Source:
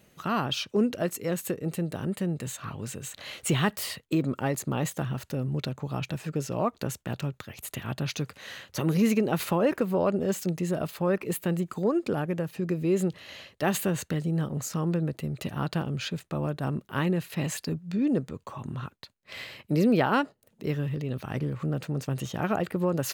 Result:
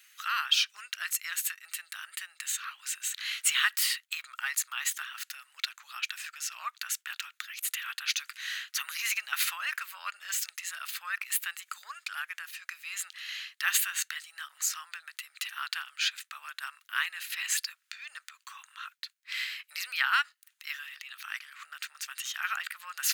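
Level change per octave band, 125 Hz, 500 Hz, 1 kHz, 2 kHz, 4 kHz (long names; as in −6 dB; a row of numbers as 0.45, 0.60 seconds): below −40 dB, below −40 dB, −5.0 dB, +6.0 dB, +6.5 dB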